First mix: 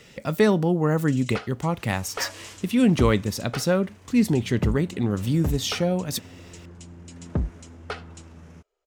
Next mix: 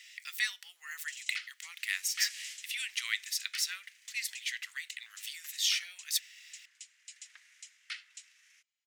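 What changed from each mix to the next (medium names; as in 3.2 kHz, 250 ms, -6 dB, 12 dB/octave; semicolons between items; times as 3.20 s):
master: add Chebyshev high-pass 1.9 kHz, order 4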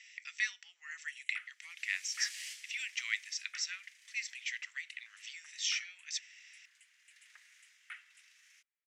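speech: add rippled Chebyshev low-pass 7.8 kHz, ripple 9 dB; first sound: add Butterworth band-stop 5.1 kHz, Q 0.54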